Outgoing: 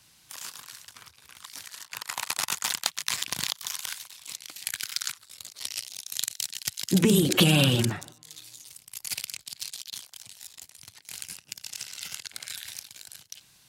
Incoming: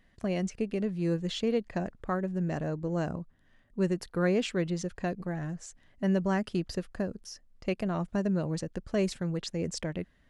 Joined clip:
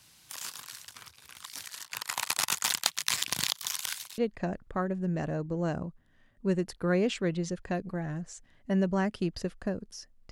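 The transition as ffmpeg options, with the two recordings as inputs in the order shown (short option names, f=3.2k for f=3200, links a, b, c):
-filter_complex "[0:a]apad=whole_dur=10.31,atrim=end=10.31,atrim=end=4.182[a];[1:a]atrim=start=1.508:end=7.64[b];[a][b]acrossfade=d=0.004:c1=hsin:c2=hsin"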